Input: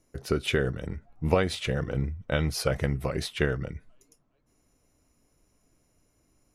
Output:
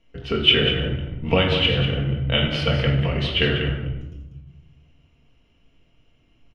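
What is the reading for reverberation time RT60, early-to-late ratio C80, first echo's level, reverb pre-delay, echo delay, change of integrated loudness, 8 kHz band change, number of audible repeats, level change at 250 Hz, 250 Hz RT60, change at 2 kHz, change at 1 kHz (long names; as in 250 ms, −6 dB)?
1.0 s, 5.0 dB, −7.0 dB, 4 ms, 193 ms, +8.5 dB, below −10 dB, 1, +6.5 dB, 1.6 s, +8.5 dB, +5.0 dB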